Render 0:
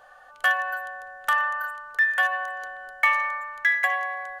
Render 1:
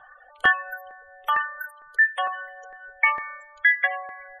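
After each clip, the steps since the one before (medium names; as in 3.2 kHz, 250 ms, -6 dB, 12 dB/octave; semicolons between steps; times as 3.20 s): reverb removal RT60 0.74 s; spectral gate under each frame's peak -25 dB strong; LFO notch saw up 2.2 Hz 470–2100 Hz; trim +4 dB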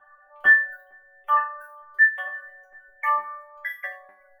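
median filter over 5 samples; high-order bell 5.2 kHz -10 dB; chord resonator G3 fifth, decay 0.32 s; trim +9 dB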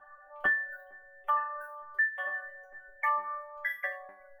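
tilt shelf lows +4 dB, about 1.3 kHz; de-hum 373.5 Hz, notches 2; compression 6:1, threshold -26 dBFS, peak gain reduction 13 dB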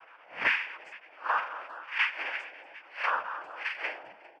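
reverse spectral sustain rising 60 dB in 0.31 s; speakerphone echo 400 ms, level -23 dB; noise-vocoded speech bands 8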